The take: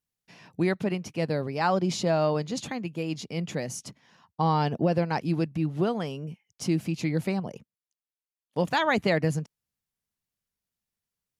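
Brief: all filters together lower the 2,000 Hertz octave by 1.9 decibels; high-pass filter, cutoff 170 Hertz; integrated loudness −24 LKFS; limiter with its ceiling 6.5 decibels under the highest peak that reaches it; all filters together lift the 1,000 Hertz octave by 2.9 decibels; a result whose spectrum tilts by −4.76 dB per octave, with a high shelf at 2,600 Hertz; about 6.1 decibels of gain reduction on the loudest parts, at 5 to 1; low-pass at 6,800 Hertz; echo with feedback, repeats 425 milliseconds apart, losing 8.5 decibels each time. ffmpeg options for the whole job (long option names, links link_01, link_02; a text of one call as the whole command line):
ffmpeg -i in.wav -af "highpass=170,lowpass=6800,equalizer=frequency=1000:width_type=o:gain=4,equalizer=frequency=2000:width_type=o:gain=-7,highshelf=frequency=2600:gain=7.5,acompressor=threshold=-25dB:ratio=5,alimiter=limit=-22dB:level=0:latency=1,aecho=1:1:425|850|1275|1700:0.376|0.143|0.0543|0.0206,volume=9dB" out.wav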